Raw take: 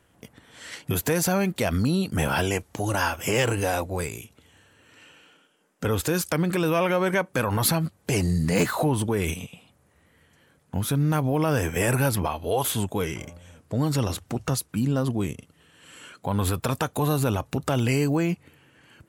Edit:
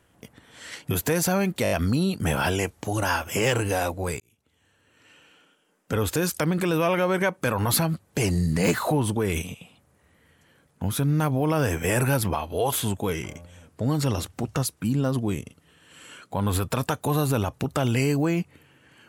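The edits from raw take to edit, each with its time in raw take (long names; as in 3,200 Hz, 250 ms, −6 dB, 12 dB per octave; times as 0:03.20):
0:01.63: stutter 0.02 s, 5 plays
0:04.12–0:06.07: fade in equal-power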